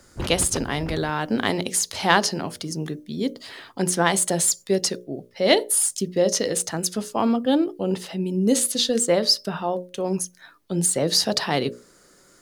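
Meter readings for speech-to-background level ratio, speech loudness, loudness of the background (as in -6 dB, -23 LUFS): 13.0 dB, -22.5 LUFS, -35.5 LUFS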